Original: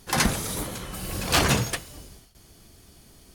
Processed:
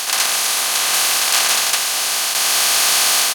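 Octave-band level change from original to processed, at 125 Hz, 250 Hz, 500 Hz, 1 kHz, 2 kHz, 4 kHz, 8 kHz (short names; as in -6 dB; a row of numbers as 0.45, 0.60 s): under -20 dB, -10.5 dB, +2.5 dB, +8.5 dB, +11.0 dB, +15.5 dB, +17.0 dB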